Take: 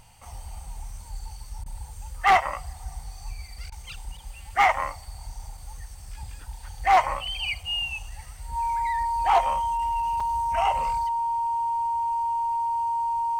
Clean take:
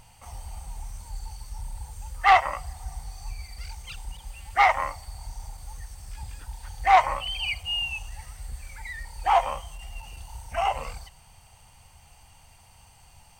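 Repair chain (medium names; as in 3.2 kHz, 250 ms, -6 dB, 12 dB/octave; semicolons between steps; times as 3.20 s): clip repair -12 dBFS; band-stop 930 Hz, Q 30; interpolate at 10.20 s, 4.6 ms; interpolate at 1.64/3.70 s, 19 ms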